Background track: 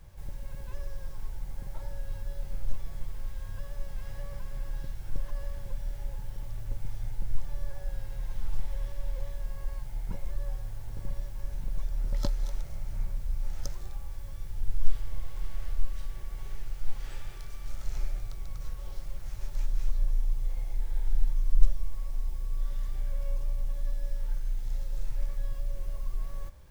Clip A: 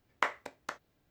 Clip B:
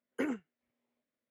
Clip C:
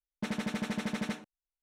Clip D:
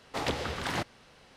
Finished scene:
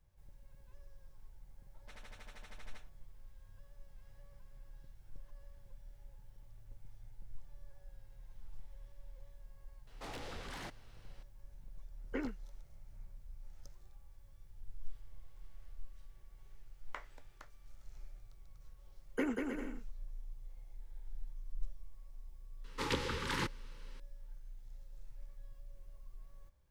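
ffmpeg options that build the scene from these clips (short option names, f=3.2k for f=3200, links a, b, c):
-filter_complex "[4:a]asplit=2[a][b];[2:a]asplit=2[c][d];[0:a]volume=-19.5dB[e];[3:a]highpass=630[f];[a]asoftclip=type=tanh:threshold=-34.5dB[g];[c]highpass=120,lowpass=4.2k[h];[d]aecho=1:1:190|313.5|393.8|446|479.9:0.631|0.398|0.251|0.158|0.1[i];[b]asuperstop=centerf=680:order=20:qfactor=2.4[j];[f]atrim=end=1.62,asetpts=PTS-STARTPTS,volume=-16.5dB,afade=t=in:d=0.004:c=hsin,afade=t=out:st=1.616:d=0.004:c=hsin,adelay=1650[k];[g]atrim=end=1.36,asetpts=PTS-STARTPTS,volume=-8.5dB,afade=t=in:d=0.004:c=hsin,afade=t=out:st=1.356:d=0.004:c=hsin,adelay=9870[l];[h]atrim=end=1.3,asetpts=PTS-STARTPTS,volume=-5dB,afade=t=in:d=0.004:c=hsin,afade=t=out:st=1.296:d=0.004:c=hsin,adelay=11950[m];[1:a]atrim=end=1.1,asetpts=PTS-STARTPTS,volume=-17dB,afade=t=in:d=0.004:c=hsin,afade=t=out:st=1.096:d=0.004:c=hsin,adelay=16720[n];[i]atrim=end=1.3,asetpts=PTS-STARTPTS,volume=-1dB,afade=t=in:d=0.004:c=hsin,afade=t=out:st=1.296:d=0.004:c=hsin,adelay=18990[o];[j]atrim=end=1.36,asetpts=PTS-STARTPTS,volume=-3.5dB,afade=t=in:d=0.004:c=hsin,afade=t=out:st=1.356:d=0.004:c=hsin,adelay=22640[p];[e][k][l][m][n][o][p]amix=inputs=7:normalize=0"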